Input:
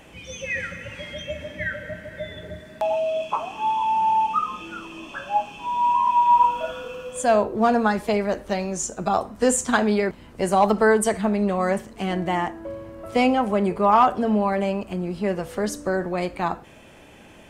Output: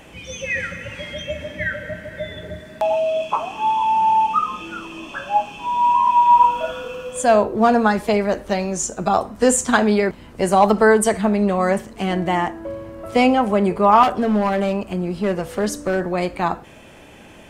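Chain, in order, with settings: 14.03–16.07 hard clip -18 dBFS, distortion -22 dB; gain +4 dB

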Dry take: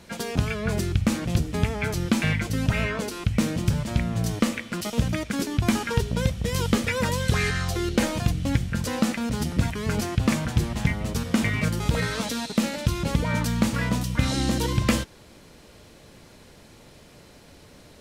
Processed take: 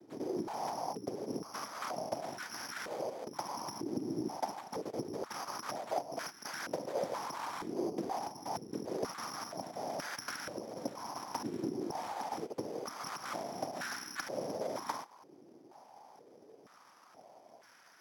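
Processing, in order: self-modulated delay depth 0.75 ms; compressor, threshold -25 dBFS, peak gain reduction 9.5 dB; noise vocoder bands 4; careless resampling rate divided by 8×, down filtered, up zero stuff; stepped band-pass 2.1 Hz 360–1500 Hz; gain +3.5 dB

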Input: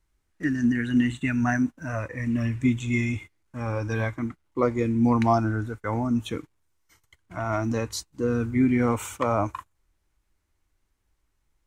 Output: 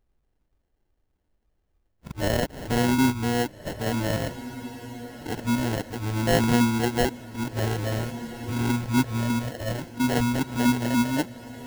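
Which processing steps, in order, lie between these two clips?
whole clip reversed; sample-rate reducer 1200 Hz, jitter 0%; diffused feedback echo 1.612 s, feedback 41%, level -14 dB

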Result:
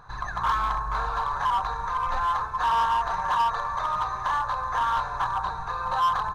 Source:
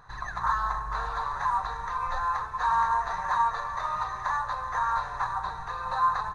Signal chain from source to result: high shelf 4100 Hz -4.5 dB; notch 1900 Hz, Q 6.6; in parallel at -6.5 dB: wavefolder -26 dBFS; on the sum: gain +1 dB

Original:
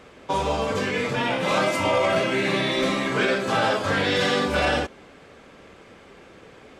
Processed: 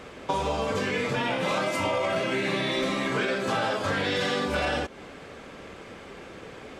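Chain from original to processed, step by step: compressor 4:1, threshold -30 dBFS, peak gain reduction 10.5 dB; gain +4.5 dB

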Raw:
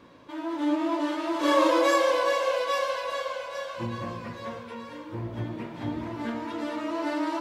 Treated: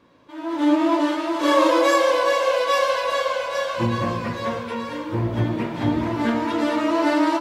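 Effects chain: AGC gain up to 15.5 dB; gain -4.5 dB

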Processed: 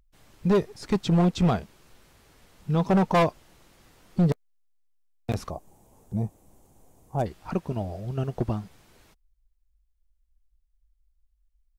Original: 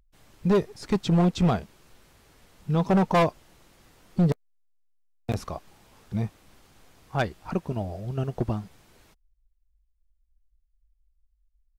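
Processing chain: 5.5–7.26 band shelf 2500 Hz -15.5 dB 2.4 oct

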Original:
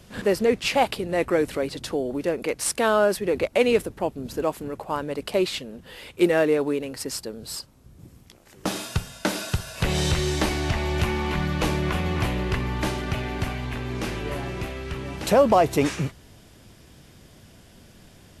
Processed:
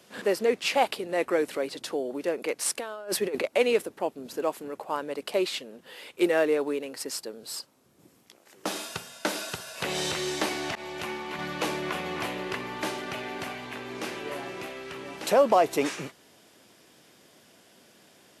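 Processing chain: HPF 310 Hz 12 dB/oct; 2.79–3.44 negative-ratio compressor -27 dBFS, ratio -0.5; 10.75–11.39 expander -24 dBFS; gain -2.5 dB

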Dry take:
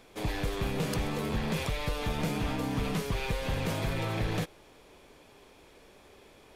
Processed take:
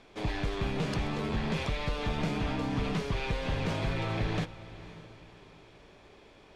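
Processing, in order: LPF 5300 Hz 12 dB/oct; notch 500 Hz, Q 16; on a send: diffused feedback echo 0.544 s, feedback 41%, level -16 dB

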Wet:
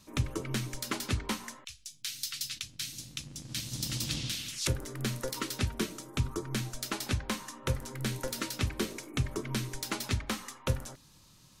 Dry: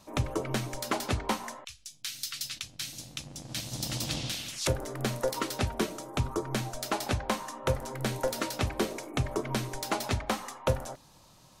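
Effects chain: bell 700 Hz -13.5 dB 1.2 oct

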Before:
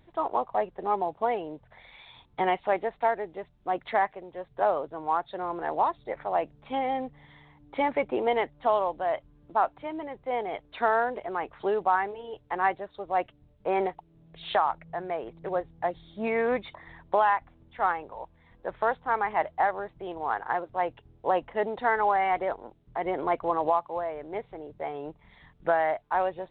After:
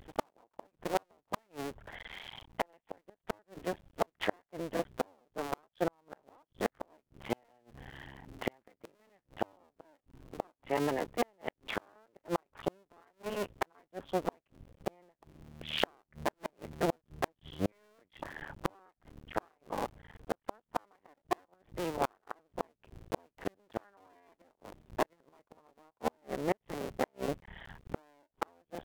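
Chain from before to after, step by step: cycle switcher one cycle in 2, muted; flipped gate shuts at -23 dBFS, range -42 dB; speed mistake 48 kHz file played as 44.1 kHz; gain +7 dB

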